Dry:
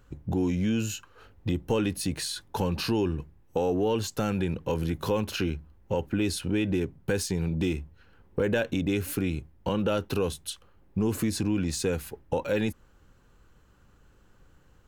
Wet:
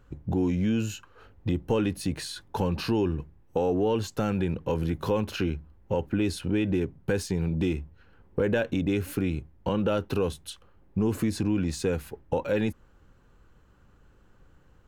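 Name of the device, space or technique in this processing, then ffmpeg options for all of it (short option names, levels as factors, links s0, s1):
behind a face mask: -af "highshelf=f=3400:g=-7.5,volume=1.12"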